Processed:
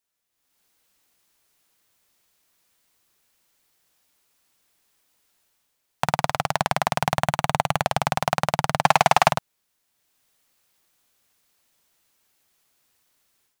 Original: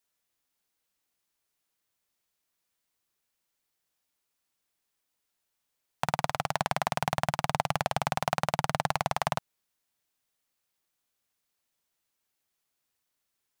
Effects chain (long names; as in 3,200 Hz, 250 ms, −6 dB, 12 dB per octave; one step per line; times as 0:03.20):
0:07.20–0:07.84: notch filter 5,100 Hz, Q 6.5
0:08.84–0:09.32: mid-hump overdrive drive 24 dB, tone 7,700 Hz, clips at −7.5 dBFS
automatic gain control gain up to 14 dB
level −1 dB